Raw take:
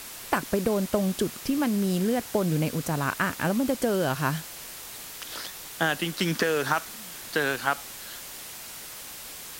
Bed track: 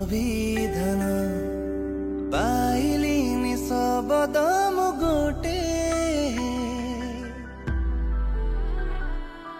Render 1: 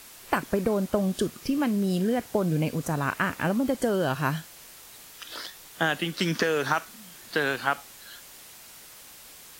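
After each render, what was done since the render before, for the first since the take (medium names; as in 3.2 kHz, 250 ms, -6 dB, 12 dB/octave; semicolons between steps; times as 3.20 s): noise print and reduce 7 dB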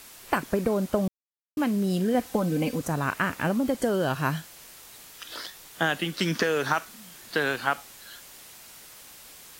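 1.08–1.57 s: mute; 2.14–2.81 s: comb 3.9 ms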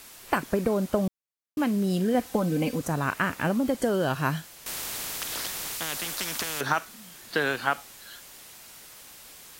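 4.66–6.61 s: spectrum-flattening compressor 4:1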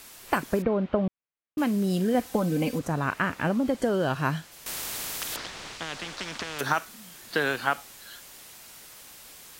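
0.62–1.58 s: low-pass 3.1 kHz 24 dB/octave; 2.78–4.51 s: treble shelf 6.2 kHz -> 9.3 kHz -10.5 dB; 5.36–6.59 s: distance through air 120 m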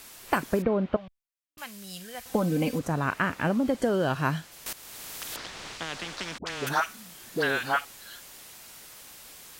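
0.96–2.26 s: amplifier tone stack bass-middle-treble 10-0-10; 4.73–5.70 s: fade in, from -16 dB; 6.38–7.85 s: phase dispersion highs, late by 80 ms, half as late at 810 Hz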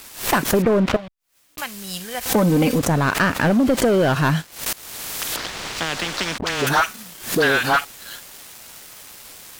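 waveshaping leveller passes 3; swell ahead of each attack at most 130 dB/s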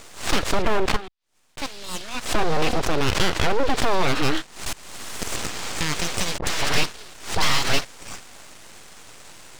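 resonant low-pass 4.2 kHz, resonance Q 1.8; full-wave rectifier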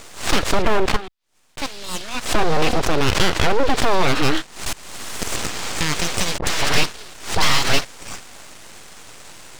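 trim +3.5 dB; peak limiter -3 dBFS, peak gain reduction 3 dB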